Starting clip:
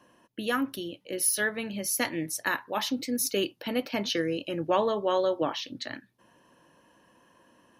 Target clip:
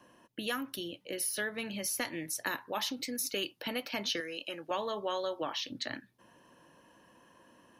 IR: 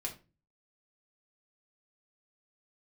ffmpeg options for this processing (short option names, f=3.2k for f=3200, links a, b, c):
-filter_complex "[0:a]asettb=1/sr,asplit=3[a][b][c];[a]atrim=end=1.584[d];[b]atrim=start=1.58:end=2.02,asetpts=PTS-STARTPTS,afade=t=in:d=0.004:c=qsin,afade=t=out:st=0.436:d=0.004:c=qsin,aeval=exprs='0.178*(cos(1*acos(clip(val(0)/0.178,-1,1)))-cos(1*PI/2))+0.00562*(cos(5*acos(clip(val(0)/0.178,-1,1)))-cos(5*PI/2))':c=same[e];[c]atrim=start=2.016[f];[d][e]acrossfade=d=0.004:c1=hsin:c2=qsin[g];[g][f]acrossfade=d=0.004:c1=qsin:c2=hsin,acrossover=split=750|3500[h][i][j];[h]acompressor=threshold=-39dB:ratio=4[k];[i]acompressor=threshold=-36dB:ratio=4[l];[j]acompressor=threshold=-34dB:ratio=4[m];[k][l][m]amix=inputs=3:normalize=0,asettb=1/sr,asplit=3[n][o][p];[n]atrim=end=4.204[q];[o]atrim=start=4.2:end=4.71,asetpts=PTS-STARTPTS,afade=t=in:d=0.004:c=qsin,afade=t=out:st=0.506:d=0.004:c=qsin,highpass=f=560:p=1[r];[p]atrim=start=4.706[s];[q][r]acrossfade=d=0.004:c1=hsin:c2=qsin[t];[t][s]acrossfade=d=0.004:c1=qsin:c2=hsin"